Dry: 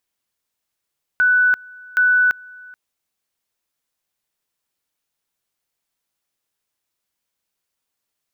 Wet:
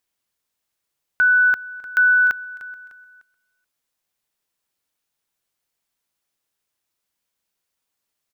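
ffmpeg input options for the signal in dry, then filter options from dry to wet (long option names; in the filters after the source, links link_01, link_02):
-f lavfi -i "aevalsrc='pow(10,(-11.5-25.5*gte(mod(t,0.77),0.34))/20)*sin(2*PI*1490*t)':duration=1.54:sample_rate=44100"
-af "aecho=1:1:301|602|903:0.158|0.0586|0.0217"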